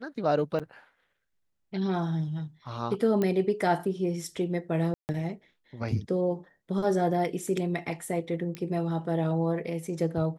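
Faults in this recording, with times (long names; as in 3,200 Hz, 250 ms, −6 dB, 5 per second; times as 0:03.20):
0:00.59–0:00.60: drop-out 6.8 ms
0:03.22: click −16 dBFS
0:04.94–0:05.09: drop-out 149 ms
0:08.55: click −22 dBFS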